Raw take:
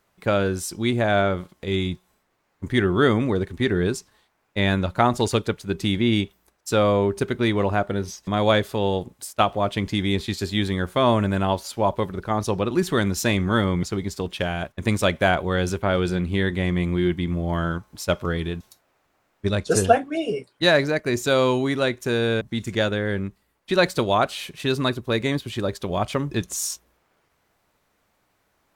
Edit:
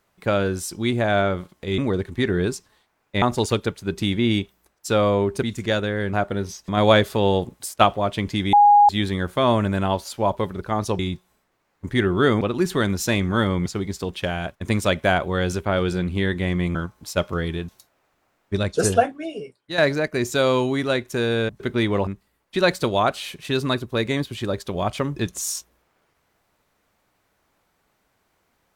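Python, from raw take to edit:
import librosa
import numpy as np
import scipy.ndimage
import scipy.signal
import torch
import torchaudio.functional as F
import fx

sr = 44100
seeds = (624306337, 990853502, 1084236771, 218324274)

y = fx.edit(x, sr, fx.move(start_s=1.78, length_s=1.42, to_s=12.58),
    fx.cut(start_s=4.64, length_s=0.4),
    fx.swap(start_s=7.25, length_s=0.47, other_s=22.52, other_length_s=0.7),
    fx.clip_gain(start_s=8.36, length_s=1.16, db=3.5),
    fx.bleep(start_s=10.12, length_s=0.36, hz=823.0, db=-9.0),
    fx.cut(start_s=16.92, length_s=0.75),
    fx.fade_out_to(start_s=19.83, length_s=0.87, curve='qua', floor_db=-10.5), tone=tone)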